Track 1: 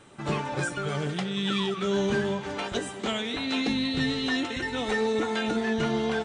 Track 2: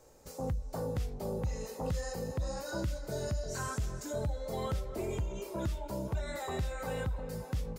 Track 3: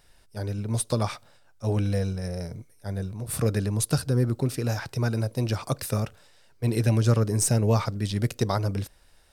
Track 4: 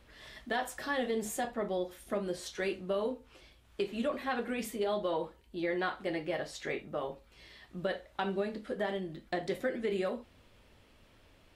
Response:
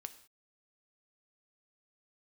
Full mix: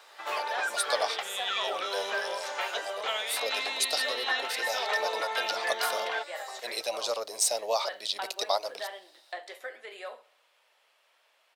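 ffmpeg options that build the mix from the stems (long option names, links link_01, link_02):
-filter_complex "[0:a]lowpass=4500,volume=1dB[link_01];[1:a]volume=-1dB[link_02];[2:a]equalizer=frequency=100:width_type=o:width=0.67:gain=8,equalizer=frequency=630:width_type=o:width=0.67:gain=6,equalizer=frequency=1600:width_type=o:width=0.67:gain=-12,equalizer=frequency=4000:width_type=o:width=0.67:gain=10,equalizer=frequency=10000:width_type=o:width=0.67:gain=-4,volume=0.5dB,asplit=2[link_03][link_04];[3:a]volume=-1dB,asplit=2[link_05][link_06];[link_06]volume=-20.5dB[link_07];[link_04]apad=whole_len=343391[link_08];[link_02][link_08]sidechaincompress=threshold=-26dB:ratio=8:attack=16:release=420[link_09];[link_07]aecho=0:1:69|138|207|276|345|414|483:1|0.51|0.26|0.133|0.0677|0.0345|0.0176[link_10];[link_01][link_09][link_03][link_05][link_10]amix=inputs=5:normalize=0,highpass=frequency=630:width=0.5412,highpass=frequency=630:width=1.3066"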